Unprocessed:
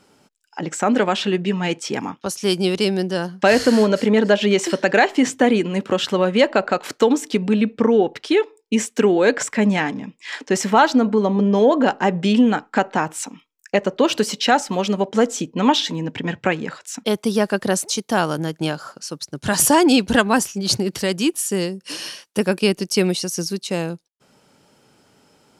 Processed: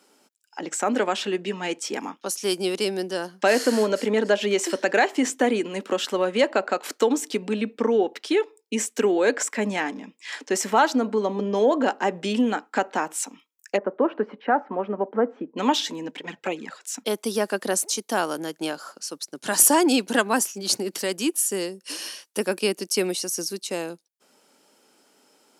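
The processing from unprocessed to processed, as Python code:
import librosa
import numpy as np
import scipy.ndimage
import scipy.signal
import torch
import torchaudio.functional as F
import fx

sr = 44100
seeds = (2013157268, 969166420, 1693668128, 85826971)

y = fx.lowpass(x, sr, hz=1600.0, slope=24, at=(13.76, 15.56), fade=0.02)
y = fx.env_flanger(y, sr, rest_ms=6.4, full_db=-15.5, at=(16.11, 16.82))
y = fx.dynamic_eq(y, sr, hz=3800.0, q=1.1, threshold_db=-32.0, ratio=4.0, max_db=-3)
y = scipy.signal.sosfilt(scipy.signal.butter(4, 240.0, 'highpass', fs=sr, output='sos'), y)
y = fx.high_shelf(y, sr, hz=6700.0, db=8.5)
y = F.gain(torch.from_numpy(y), -4.5).numpy()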